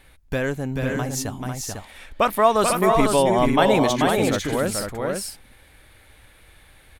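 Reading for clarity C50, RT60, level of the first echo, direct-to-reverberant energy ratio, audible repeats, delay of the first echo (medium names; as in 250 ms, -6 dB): no reverb, no reverb, -4.5 dB, no reverb, 2, 436 ms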